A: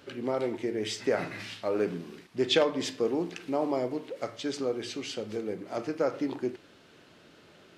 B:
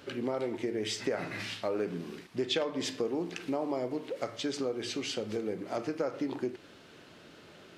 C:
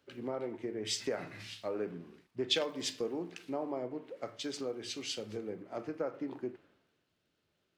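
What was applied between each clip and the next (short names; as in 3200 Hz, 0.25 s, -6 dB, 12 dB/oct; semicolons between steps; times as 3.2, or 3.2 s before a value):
compressor 3:1, threshold -33 dBFS, peak gain reduction 10.5 dB; gain +2.5 dB
crackle 140/s -50 dBFS; three-band expander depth 100%; gain -5 dB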